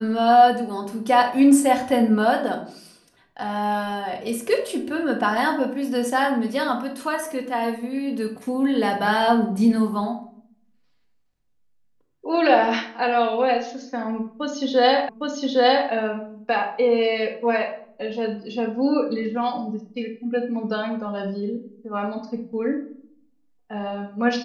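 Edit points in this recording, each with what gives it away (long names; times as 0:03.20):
0:15.09: the same again, the last 0.81 s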